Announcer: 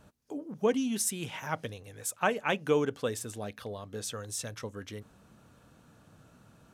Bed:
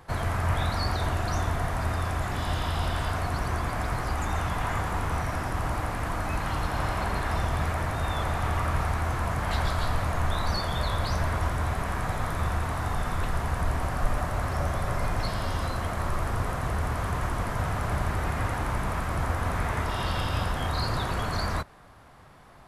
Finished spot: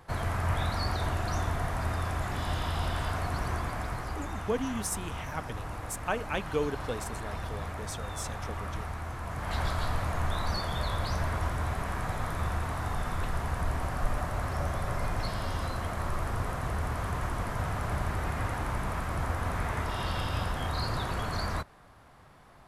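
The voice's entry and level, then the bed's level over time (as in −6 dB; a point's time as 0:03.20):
3.85 s, −3.5 dB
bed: 0:03.51 −3 dB
0:04.49 −9.5 dB
0:09.22 −9.5 dB
0:09.62 −3.5 dB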